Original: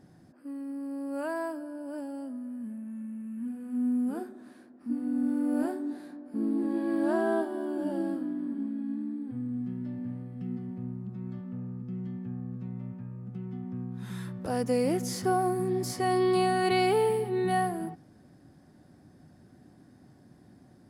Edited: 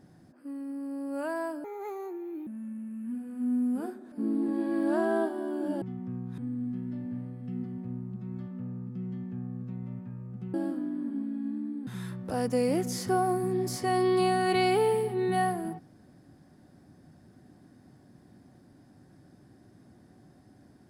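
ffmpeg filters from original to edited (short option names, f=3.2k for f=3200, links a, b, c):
-filter_complex "[0:a]asplit=8[a][b][c][d][e][f][g][h];[a]atrim=end=1.644[i];[b]atrim=start=1.64:end=2.8,asetpts=PTS-STARTPTS,asetrate=61740,aresample=44100[j];[c]atrim=start=2.796:end=4.452[k];[d]atrim=start=6.278:end=7.982[l];[e]atrim=start=13.468:end=14.032[m];[f]atrim=start=9.308:end=13.472[n];[g]atrim=start=7.978:end=9.312[o];[h]atrim=start=14.028[p];[i][j]acrossfade=d=0.004:c1=hsin:c2=hsin[q];[q][k]acrossfade=d=0.004:c1=hsin:c2=hsin[r];[r][l]acrossfade=d=0.004:c1=hsin:c2=hsin[s];[s][m]acrossfade=d=0.004:c1=hsin:c2=hsin[t];[t][n]acrossfade=d=0.004:c1=hsin:c2=hsin[u];[u][o]acrossfade=d=0.004:c1=hsin:c2=hsin[v];[v][p]acrossfade=d=0.004:c1=hsin:c2=hsin"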